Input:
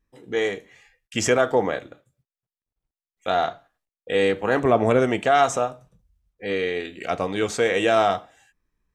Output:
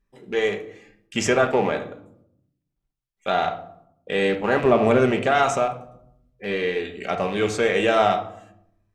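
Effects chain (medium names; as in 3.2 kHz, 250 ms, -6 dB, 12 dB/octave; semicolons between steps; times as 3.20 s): rattle on loud lows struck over -36 dBFS, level -26 dBFS; treble shelf 6.9 kHz -5 dB; reverberation RT60 0.75 s, pre-delay 5 ms, DRR 4.5 dB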